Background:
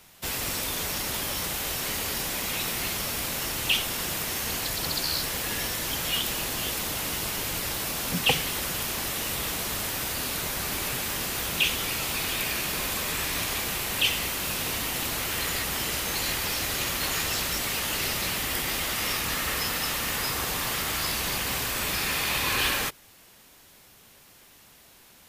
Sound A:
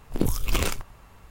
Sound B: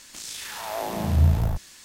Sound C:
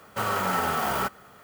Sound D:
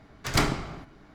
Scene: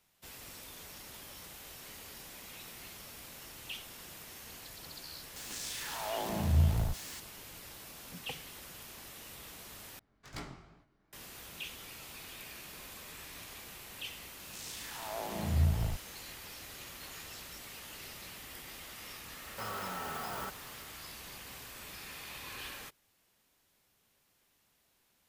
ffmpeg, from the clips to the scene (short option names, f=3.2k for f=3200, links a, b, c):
-filter_complex "[2:a]asplit=2[a][b];[0:a]volume=-19dB[c];[a]aeval=exprs='val(0)+0.5*0.0158*sgn(val(0))':c=same[d];[4:a]flanger=delay=16.5:depth=7.7:speed=2.5[e];[3:a]alimiter=level_in=1.5dB:limit=-24dB:level=0:latency=1:release=71,volume=-1.5dB[f];[c]asplit=2[g][h];[g]atrim=end=9.994[i];[e]atrim=end=1.14,asetpts=PTS-STARTPTS,volume=-17.5dB[j];[h]atrim=start=11.126[k];[d]atrim=end=1.84,asetpts=PTS-STARTPTS,volume=-8dB,afade=t=in:d=0.004:c=hsin,afade=t=out:st=1.836:d=0.004:c=hsin,adelay=5360[l];[b]atrim=end=1.84,asetpts=PTS-STARTPTS,volume=-9.5dB,afade=t=in:d=0.004:c=hsin,afade=t=out:st=1.836:d=0.004:c=hsin,adelay=14390[m];[f]atrim=end=1.43,asetpts=PTS-STARTPTS,volume=-6dB,afade=t=in:d=0.004:c=hsin,afade=t=out:st=1.426:d=0.004:c=hsin,adelay=19420[n];[i][j]acrossfade=d=0.004:c1=hsin:c2=hsin[o];[o][k]acrossfade=d=0.004:c1=hsin:c2=hsin[p];[p][l][m][n]amix=inputs=4:normalize=0"